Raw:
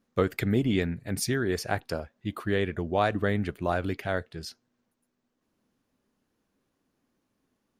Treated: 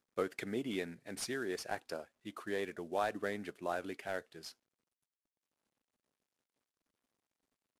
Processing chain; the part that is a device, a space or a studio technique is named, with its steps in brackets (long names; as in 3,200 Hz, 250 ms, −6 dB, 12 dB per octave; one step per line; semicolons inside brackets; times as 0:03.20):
early wireless headset (high-pass filter 290 Hz 12 dB per octave; variable-slope delta modulation 64 kbit/s)
level −8.5 dB